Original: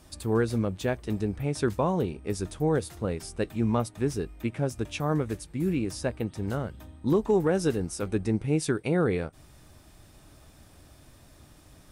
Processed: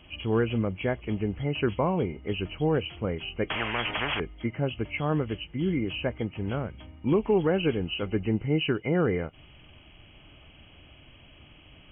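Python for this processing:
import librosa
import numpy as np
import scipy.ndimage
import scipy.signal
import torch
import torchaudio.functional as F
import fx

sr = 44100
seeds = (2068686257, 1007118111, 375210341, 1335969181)

y = fx.freq_compress(x, sr, knee_hz=2000.0, ratio=4.0)
y = fx.spectral_comp(y, sr, ratio=10.0, at=(3.5, 4.2))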